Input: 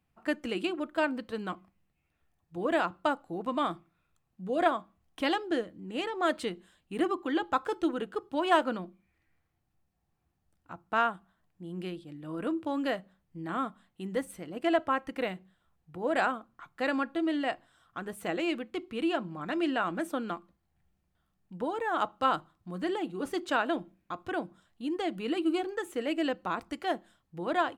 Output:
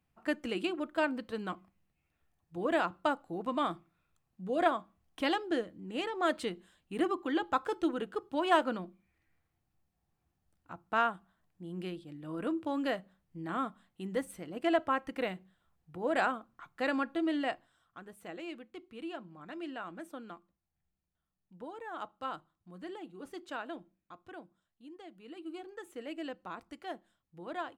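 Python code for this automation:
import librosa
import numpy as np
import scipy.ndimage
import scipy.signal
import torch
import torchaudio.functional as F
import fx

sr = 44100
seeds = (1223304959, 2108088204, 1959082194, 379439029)

y = fx.gain(x, sr, db=fx.line((17.45, -2.0), (18.08, -12.0), (23.77, -12.0), (25.17, -19.0), (25.86, -10.5)))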